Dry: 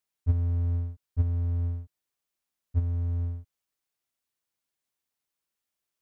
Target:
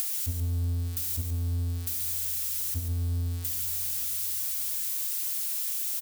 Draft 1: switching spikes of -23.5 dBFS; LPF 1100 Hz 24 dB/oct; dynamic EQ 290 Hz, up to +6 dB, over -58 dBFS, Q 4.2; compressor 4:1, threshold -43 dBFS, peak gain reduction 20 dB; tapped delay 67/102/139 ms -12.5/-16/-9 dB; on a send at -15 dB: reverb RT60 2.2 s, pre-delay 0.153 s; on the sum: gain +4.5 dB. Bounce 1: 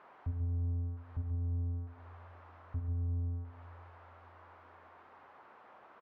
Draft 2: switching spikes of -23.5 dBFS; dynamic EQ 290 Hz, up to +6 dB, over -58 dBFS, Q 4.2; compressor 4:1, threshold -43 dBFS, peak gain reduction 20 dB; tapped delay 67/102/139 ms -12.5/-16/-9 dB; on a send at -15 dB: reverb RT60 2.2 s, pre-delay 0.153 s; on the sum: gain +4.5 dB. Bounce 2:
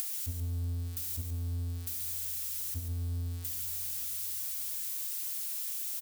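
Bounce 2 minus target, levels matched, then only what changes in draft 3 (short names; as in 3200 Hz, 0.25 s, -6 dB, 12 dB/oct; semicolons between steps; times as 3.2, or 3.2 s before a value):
compressor: peak gain reduction +5.5 dB
change: compressor 4:1, threshold -35.5 dBFS, peak gain reduction 14.5 dB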